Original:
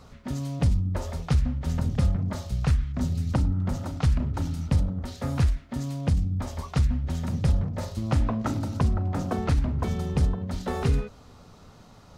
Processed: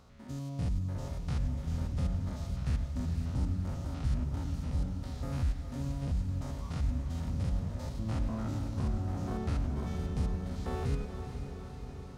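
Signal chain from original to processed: stepped spectrum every 0.1 s; diffused feedback echo 0.464 s, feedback 69%, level -8 dB; gain -7.5 dB

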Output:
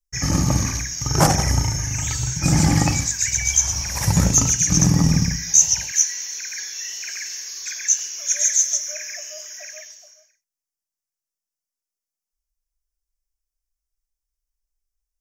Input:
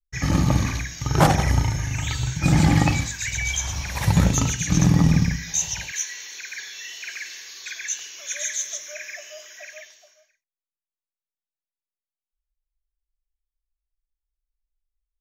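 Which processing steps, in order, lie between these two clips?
resonant high shelf 4600 Hz +6 dB, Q 3

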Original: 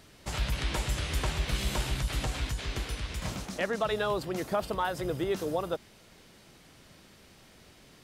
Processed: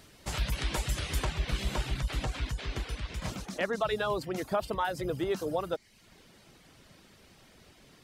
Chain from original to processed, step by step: reverb removal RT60 0.56 s; high shelf 6900 Hz +3 dB, from 1.25 s -9 dB, from 3.24 s -2 dB

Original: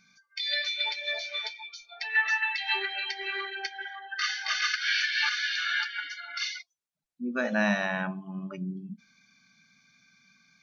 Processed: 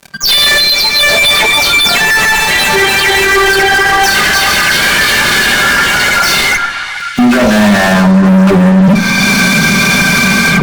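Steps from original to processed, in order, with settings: spectral delay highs early, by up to 0.199 s; recorder AGC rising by 46 dB/s; spectral gain 0.6–1.01, 260–3800 Hz -18 dB; fuzz box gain 46 dB, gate -53 dBFS; tilt shelf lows +4 dB, about 1400 Hz; on a send: delay with a stepping band-pass 0.429 s, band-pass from 1100 Hz, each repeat 0.7 oct, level -8.5 dB; on the sum: shoebox room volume 3900 m³, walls furnished, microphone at 1.2 m; maximiser +9 dB; gain -1 dB

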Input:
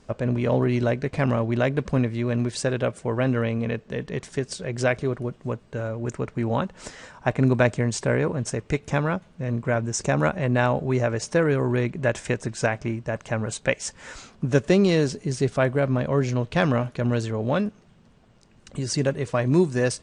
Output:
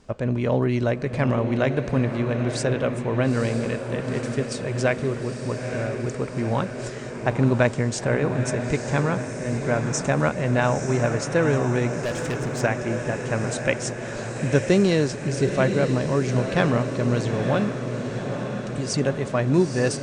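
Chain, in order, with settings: diffused feedback echo 0.913 s, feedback 64%, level -7 dB; 12.02–12.61 overloaded stage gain 23 dB

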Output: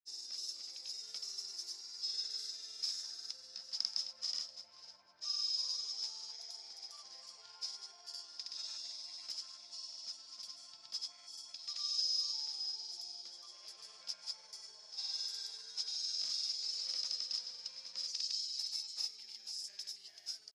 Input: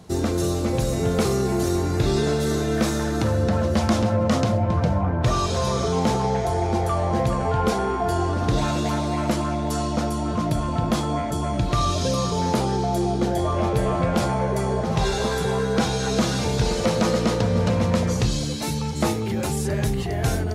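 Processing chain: band-pass 5100 Hz, Q 17; tilt +2.5 dB/oct; grains, pitch spread up and down by 0 st; gain +1.5 dB

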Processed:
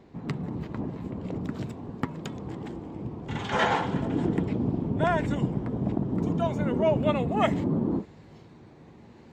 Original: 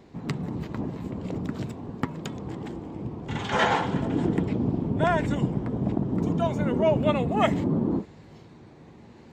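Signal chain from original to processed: high shelf 4300 Hz -8 dB, from 1.41 s -2.5 dB; gain -1.5 dB

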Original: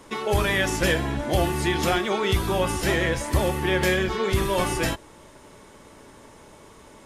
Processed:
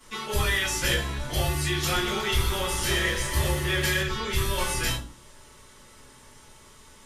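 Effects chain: passive tone stack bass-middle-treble 5-5-5; reverb RT60 0.40 s, pre-delay 3 ms, DRR -9 dB; 1.8–4.03 lo-fi delay 0.121 s, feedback 80%, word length 9-bit, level -11.5 dB

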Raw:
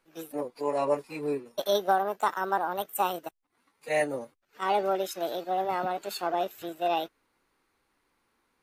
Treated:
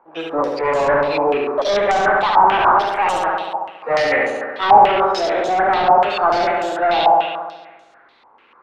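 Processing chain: one diode to ground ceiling -24 dBFS; on a send: flutter echo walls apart 11.9 m, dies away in 1.3 s; on the sum: overdrive pedal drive 23 dB, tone 1600 Hz, clips at -11.5 dBFS; stepped low-pass 6.8 Hz 890–6900 Hz; gain +2.5 dB

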